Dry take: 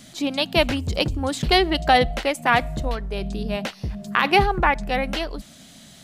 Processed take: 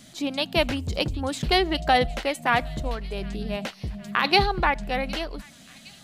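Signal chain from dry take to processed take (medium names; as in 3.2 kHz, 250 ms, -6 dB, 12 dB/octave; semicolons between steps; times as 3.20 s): 4.24–4.70 s: peaking EQ 4.1 kHz +13.5 dB 0.44 oct; feedback echo behind a high-pass 762 ms, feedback 60%, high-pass 2 kHz, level -20.5 dB; trim -3.5 dB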